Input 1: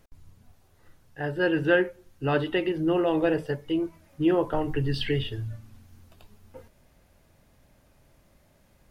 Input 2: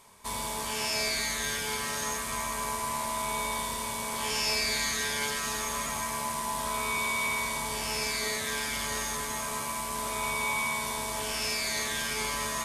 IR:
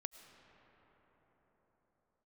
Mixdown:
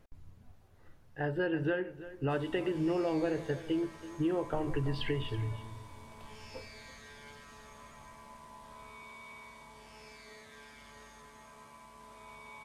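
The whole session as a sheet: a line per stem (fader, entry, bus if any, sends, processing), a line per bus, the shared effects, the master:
-2.5 dB, 0.00 s, send -13 dB, echo send -14.5 dB, compressor 6:1, threshold -27 dBFS, peak gain reduction 11.5 dB
-18.0 dB, 2.05 s, no send, no echo send, high shelf 9500 Hz -9 dB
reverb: on, pre-delay 65 ms
echo: echo 0.331 s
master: high shelf 3700 Hz -9 dB

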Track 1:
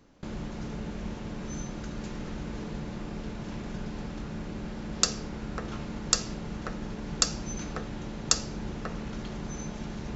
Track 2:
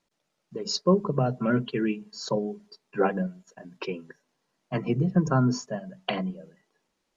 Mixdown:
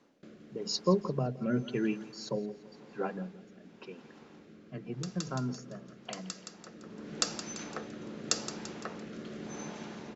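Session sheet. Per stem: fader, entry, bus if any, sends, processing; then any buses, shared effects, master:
+0.5 dB, 0.00 s, no send, echo send -15 dB, HPF 250 Hz 12 dB/oct; high shelf 5700 Hz -6.5 dB; auto duck -16 dB, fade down 0.45 s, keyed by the second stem
2.52 s -4 dB -> 2.88 s -11 dB, 0.00 s, no send, echo send -18 dB, dry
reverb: off
echo: feedback echo 0.17 s, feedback 53%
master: rotary speaker horn 0.9 Hz

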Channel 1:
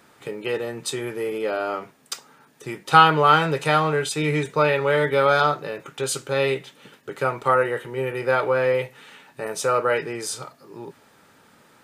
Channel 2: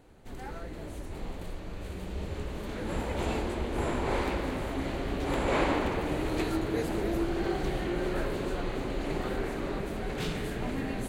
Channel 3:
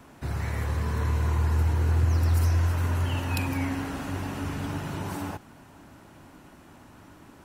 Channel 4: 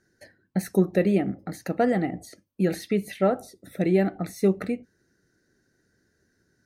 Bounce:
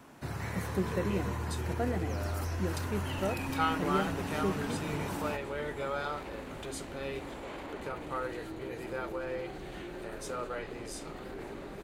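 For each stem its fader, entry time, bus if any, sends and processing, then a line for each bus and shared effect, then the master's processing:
-17.5 dB, 0.65 s, no send, upward compressor, threshold -21 dBFS
-7.5 dB, 1.95 s, no send, limiter -26.5 dBFS, peak gain reduction 11 dB
-2.5 dB, 0.00 s, no send, bell 68 Hz -8.5 dB 0.77 oct; limiter -24 dBFS, peak gain reduction 10 dB
-11.5 dB, 0.00 s, no send, dry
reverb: off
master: low shelf 60 Hz -6 dB

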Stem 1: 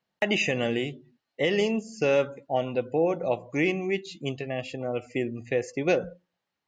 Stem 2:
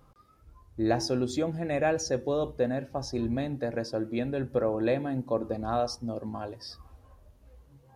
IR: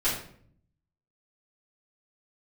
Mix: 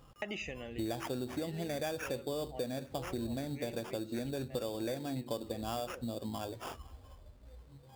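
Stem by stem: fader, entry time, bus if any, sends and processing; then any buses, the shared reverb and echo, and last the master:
-7.5 dB, 0.00 s, no send, auto duck -11 dB, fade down 0.65 s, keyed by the second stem
+0.5 dB, 0.00 s, no send, sample-rate reducer 4100 Hz, jitter 0%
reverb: off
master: compressor 5:1, threshold -35 dBFS, peak gain reduction 13.5 dB

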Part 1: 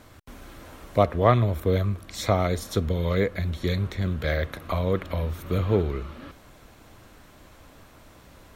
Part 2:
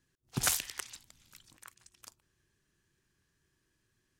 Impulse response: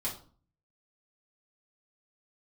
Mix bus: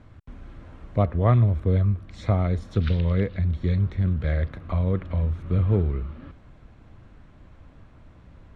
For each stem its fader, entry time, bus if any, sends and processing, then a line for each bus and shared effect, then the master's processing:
-6.0 dB, 0.00 s, no send, tone controls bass +11 dB, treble -14 dB
-4.0 dB, 2.40 s, no send, elliptic band-pass 1300–3900 Hz, stop band 40 dB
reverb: off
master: LPF 8900 Hz 24 dB/oct

